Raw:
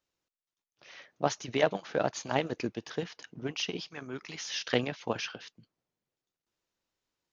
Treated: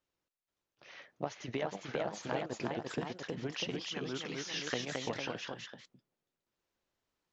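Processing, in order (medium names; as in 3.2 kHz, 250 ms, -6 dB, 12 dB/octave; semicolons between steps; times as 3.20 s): treble shelf 3.7 kHz -7.5 dB; compression 10:1, threshold -33 dBFS, peak gain reduction 14 dB; ever faster or slower copies 485 ms, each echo +1 st, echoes 2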